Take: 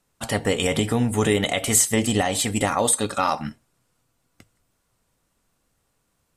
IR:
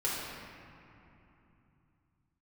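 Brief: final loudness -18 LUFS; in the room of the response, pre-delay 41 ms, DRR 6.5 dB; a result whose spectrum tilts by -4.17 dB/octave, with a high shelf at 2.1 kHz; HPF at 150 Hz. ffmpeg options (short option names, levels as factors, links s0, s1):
-filter_complex "[0:a]highpass=150,highshelf=f=2100:g=-7,asplit=2[s0][s1];[1:a]atrim=start_sample=2205,adelay=41[s2];[s1][s2]afir=irnorm=-1:irlink=0,volume=0.2[s3];[s0][s3]amix=inputs=2:normalize=0,volume=1.88"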